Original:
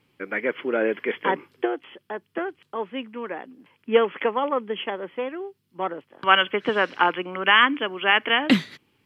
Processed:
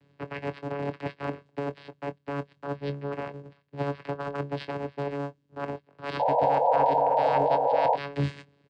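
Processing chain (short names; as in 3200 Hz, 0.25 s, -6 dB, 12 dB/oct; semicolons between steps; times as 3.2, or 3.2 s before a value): cycle switcher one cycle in 3, inverted; reverse; compressor 8:1, threshold -31 dBFS, peak gain reduction 19.5 dB; reverse; vocoder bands 8, saw 136 Hz; painted sound noise, 6.45–8.29, 430–950 Hz -26 dBFS; doubler 24 ms -12.5 dB; speed mistake 24 fps film run at 25 fps; gain +3 dB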